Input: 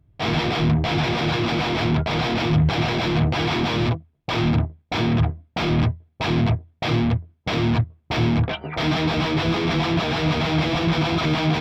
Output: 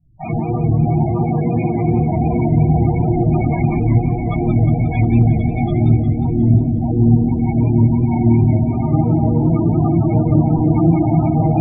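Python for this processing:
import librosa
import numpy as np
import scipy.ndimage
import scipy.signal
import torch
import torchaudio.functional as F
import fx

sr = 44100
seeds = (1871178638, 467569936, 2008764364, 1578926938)

y = fx.highpass(x, sr, hz=fx.line((0.78, 54.0), (1.67, 160.0)), slope=24, at=(0.78, 1.67), fade=0.02)
y = fx.echo_swell(y, sr, ms=153, loudest=8, wet_db=-11.5)
y = np.clip(10.0 ** (10.5 / 20.0) * y, -1.0, 1.0) / 10.0 ** (10.5 / 20.0)
y = fx.gaussian_blur(y, sr, sigma=8.2, at=(5.89, 7.04), fade=0.02)
y = fx.room_shoebox(y, sr, seeds[0], volume_m3=740.0, walls='furnished', distance_m=8.2)
y = fx.spec_topn(y, sr, count=16)
y = fx.echo_warbled(y, sr, ms=179, feedback_pct=57, rate_hz=2.8, cents=130, wet_db=-8)
y = y * librosa.db_to_amplitude(-8.5)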